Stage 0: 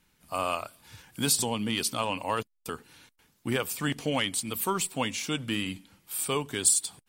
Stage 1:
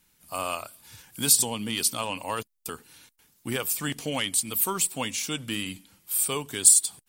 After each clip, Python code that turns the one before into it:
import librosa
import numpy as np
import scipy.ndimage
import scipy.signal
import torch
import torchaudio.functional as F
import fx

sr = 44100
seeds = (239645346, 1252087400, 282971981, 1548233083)

y = fx.high_shelf(x, sr, hz=5300.0, db=11.5)
y = F.gain(torch.from_numpy(y), -2.0).numpy()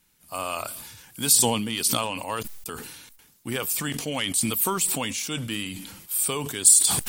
y = fx.sustainer(x, sr, db_per_s=42.0)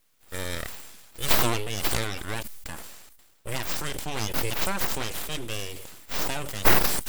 y = np.abs(x)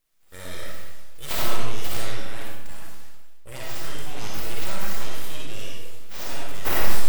y = fx.rev_freeverb(x, sr, rt60_s=1.1, hf_ratio=0.8, predelay_ms=20, drr_db=-4.5)
y = F.gain(torch.from_numpy(y), -9.0).numpy()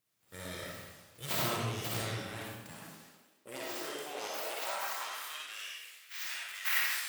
y = fx.filter_sweep_highpass(x, sr, from_hz=120.0, to_hz=1900.0, start_s=2.5, end_s=5.89, q=2.0)
y = F.gain(torch.from_numpy(y), -5.0).numpy()